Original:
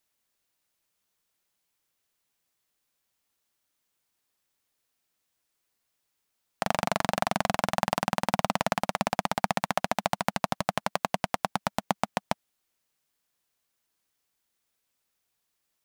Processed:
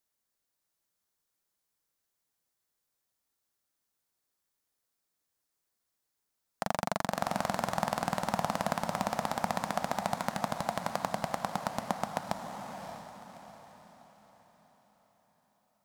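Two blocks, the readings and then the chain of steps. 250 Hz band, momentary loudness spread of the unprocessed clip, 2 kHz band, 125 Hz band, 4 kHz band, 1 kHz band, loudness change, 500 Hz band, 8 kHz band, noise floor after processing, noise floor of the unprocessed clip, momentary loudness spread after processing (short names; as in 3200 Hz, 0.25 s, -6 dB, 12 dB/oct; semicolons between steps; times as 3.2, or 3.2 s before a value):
-3.5 dB, 4 LU, -6.0 dB, -3.5 dB, -6.5 dB, -3.5 dB, -4.5 dB, -3.5 dB, -4.0 dB, -83 dBFS, -79 dBFS, 12 LU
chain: bell 2700 Hz -6 dB 0.86 oct; on a send: diffused feedback echo 0.606 s, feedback 43%, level -6.5 dB; on the sum: gain -4.5 dB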